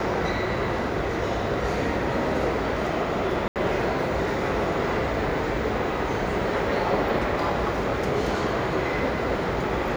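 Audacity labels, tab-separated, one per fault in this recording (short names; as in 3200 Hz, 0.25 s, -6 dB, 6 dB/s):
3.480000	3.560000	gap 78 ms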